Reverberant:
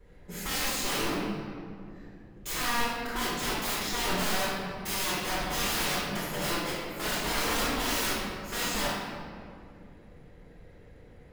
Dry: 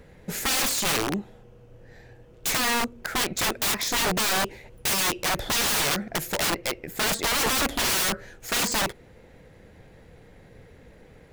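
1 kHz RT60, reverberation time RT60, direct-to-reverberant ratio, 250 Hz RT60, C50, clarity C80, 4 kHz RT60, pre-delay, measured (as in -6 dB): 2.1 s, 2.3 s, -13.0 dB, 3.4 s, -2.5 dB, 0.0 dB, 1.3 s, 3 ms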